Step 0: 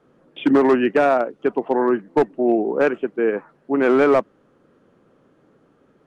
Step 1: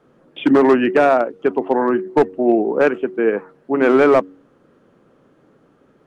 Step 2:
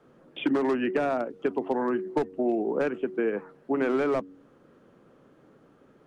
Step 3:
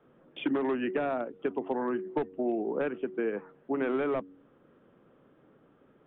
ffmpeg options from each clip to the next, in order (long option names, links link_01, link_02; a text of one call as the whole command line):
ffmpeg -i in.wav -af "bandreject=frequency=93.19:width_type=h:width=4,bandreject=frequency=186.38:width_type=h:width=4,bandreject=frequency=279.57:width_type=h:width=4,bandreject=frequency=372.76:width_type=h:width=4,bandreject=frequency=465.95:width_type=h:width=4,volume=3dB" out.wav
ffmpeg -i in.wav -filter_complex "[0:a]acrossover=split=260|3400[link_01][link_02][link_03];[link_01]acompressor=threshold=-30dB:ratio=4[link_04];[link_02]acompressor=threshold=-24dB:ratio=4[link_05];[link_03]acompressor=threshold=-48dB:ratio=4[link_06];[link_04][link_05][link_06]amix=inputs=3:normalize=0,volume=-3dB" out.wav
ffmpeg -i in.wav -af "aresample=8000,aresample=44100,volume=-4dB" out.wav